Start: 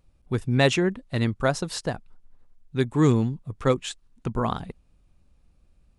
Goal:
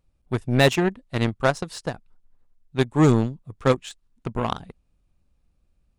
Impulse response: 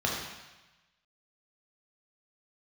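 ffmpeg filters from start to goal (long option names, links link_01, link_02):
-af "aeval=exprs='0.447*(cos(1*acos(clip(val(0)/0.447,-1,1)))-cos(1*PI/2))+0.0447*(cos(7*acos(clip(val(0)/0.447,-1,1)))-cos(7*PI/2))':channel_layout=same,aeval=exprs='0.668*sin(PI/2*1.58*val(0)/0.668)':channel_layout=same,volume=-3.5dB"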